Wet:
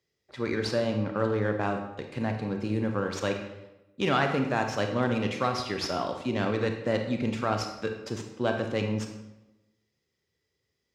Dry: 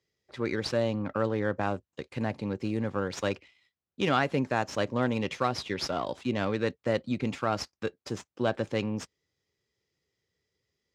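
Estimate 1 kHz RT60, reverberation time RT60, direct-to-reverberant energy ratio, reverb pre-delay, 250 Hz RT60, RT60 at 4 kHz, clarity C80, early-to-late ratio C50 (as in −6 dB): 0.95 s, 1.0 s, 4.0 dB, 28 ms, 1.1 s, 0.75 s, 9.0 dB, 6.0 dB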